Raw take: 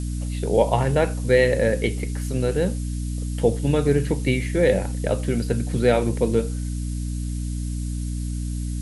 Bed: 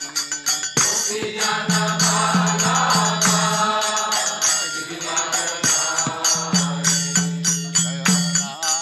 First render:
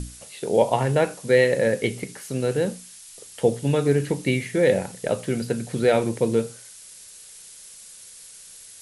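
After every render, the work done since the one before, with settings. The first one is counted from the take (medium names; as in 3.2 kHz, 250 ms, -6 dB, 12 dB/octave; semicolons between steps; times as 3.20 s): hum notches 60/120/180/240/300 Hz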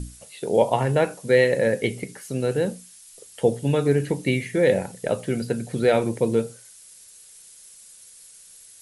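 noise reduction 6 dB, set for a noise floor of -45 dBFS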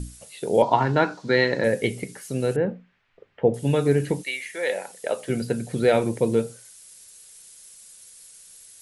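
0.62–1.64 s: cabinet simulation 110–5800 Hz, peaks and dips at 300 Hz +6 dB, 520 Hz -7 dB, 950 Hz +7 dB, 1.4 kHz +8 dB, 2.7 kHz -4 dB, 4.2 kHz +7 dB; 2.56–3.54 s: low-pass 2.2 kHz 24 dB/octave; 4.22–5.28 s: high-pass 1.3 kHz -> 370 Hz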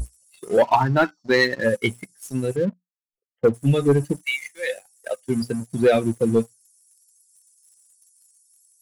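expander on every frequency bin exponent 2; waveshaping leveller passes 2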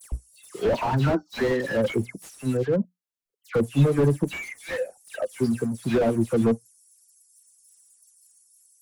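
phase dispersion lows, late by 122 ms, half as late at 2.1 kHz; slew-rate limiter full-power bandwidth 56 Hz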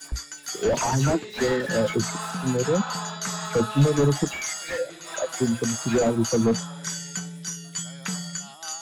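add bed -13.5 dB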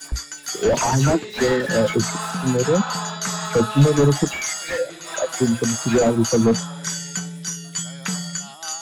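trim +4.5 dB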